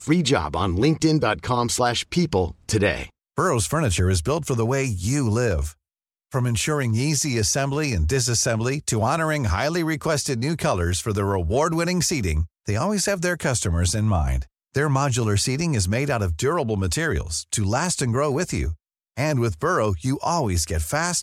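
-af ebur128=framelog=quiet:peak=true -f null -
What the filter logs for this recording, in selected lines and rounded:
Integrated loudness:
  I:         -22.6 LUFS
  Threshold: -32.6 LUFS
Loudness range:
  LRA:         1.7 LU
  Threshold: -42.8 LUFS
  LRA low:   -23.6 LUFS
  LRA high:  -21.9 LUFS
True peak:
  Peak:       -7.0 dBFS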